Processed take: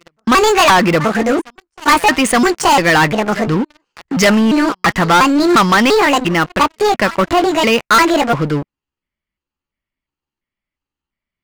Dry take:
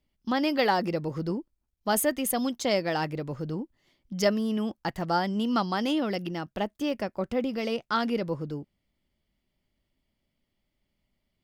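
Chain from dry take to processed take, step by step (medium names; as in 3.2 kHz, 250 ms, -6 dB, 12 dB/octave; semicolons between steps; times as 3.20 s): pitch shift switched off and on +6 st, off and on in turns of 347 ms; steep low-pass 8.7 kHz; high-order bell 1.6 kHz +10 dB; reverse echo 876 ms -23 dB; waveshaping leveller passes 5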